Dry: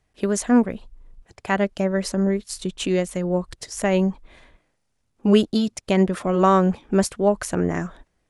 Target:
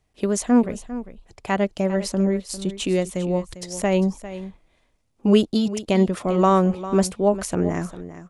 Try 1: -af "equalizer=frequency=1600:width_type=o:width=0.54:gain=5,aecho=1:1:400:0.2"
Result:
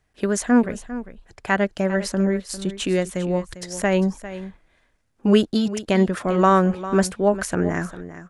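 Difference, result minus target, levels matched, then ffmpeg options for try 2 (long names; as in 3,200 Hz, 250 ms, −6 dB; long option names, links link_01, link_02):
2,000 Hz band +6.0 dB
-af "equalizer=frequency=1600:width_type=o:width=0.54:gain=-5.5,aecho=1:1:400:0.2"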